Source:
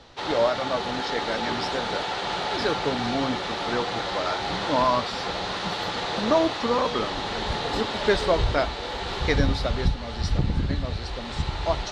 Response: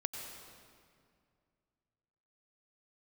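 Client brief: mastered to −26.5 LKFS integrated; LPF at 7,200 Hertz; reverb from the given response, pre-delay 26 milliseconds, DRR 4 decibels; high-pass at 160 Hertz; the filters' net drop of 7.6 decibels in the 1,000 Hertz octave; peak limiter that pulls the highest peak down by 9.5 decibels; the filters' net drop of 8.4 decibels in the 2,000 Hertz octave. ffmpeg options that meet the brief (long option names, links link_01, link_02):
-filter_complex "[0:a]highpass=160,lowpass=7200,equalizer=frequency=1000:width_type=o:gain=-8,equalizer=frequency=2000:width_type=o:gain=-8,alimiter=limit=-20.5dB:level=0:latency=1,asplit=2[link_01][link_02];[1:a]atrim=start_sample=2205,adelay=26[link_03];[link_02][link_03]afir=irnorm=-1:irlink=0,volume=-5dB[link_04];[link_01][link_04]amix=inputs=2:normalize=0,volume=3.5dB"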